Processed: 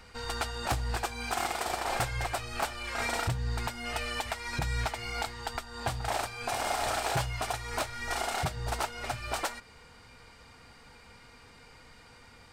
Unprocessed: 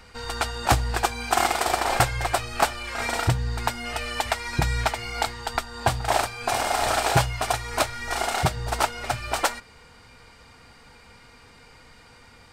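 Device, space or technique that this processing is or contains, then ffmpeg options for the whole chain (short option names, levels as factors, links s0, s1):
limiter into clipper: -af "alimiter=limit=0.158:level=0:latency=1:release=225,asoftclip=type=hard:threshold=0.0944,volume=0.668"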